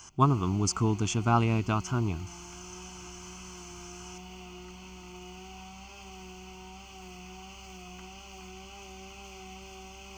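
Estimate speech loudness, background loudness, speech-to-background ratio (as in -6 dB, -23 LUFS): -28.0 LUFS, -46.0 LUFS, 18.0 dB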